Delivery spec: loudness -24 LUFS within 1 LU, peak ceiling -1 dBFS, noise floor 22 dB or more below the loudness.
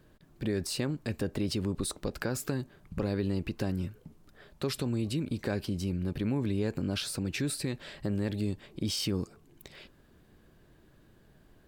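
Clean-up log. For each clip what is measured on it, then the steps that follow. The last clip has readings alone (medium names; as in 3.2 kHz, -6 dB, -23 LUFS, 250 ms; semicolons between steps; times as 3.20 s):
loudness -33.5 LUFS; peak level -17.0 dBFS; loudness target -24.0 LUFS
-> trim +9.5 dB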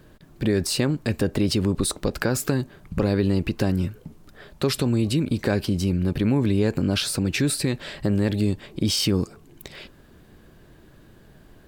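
loudness -24.0 LUFS; peak level -7.5 dBFS; noise floor -52 dBFS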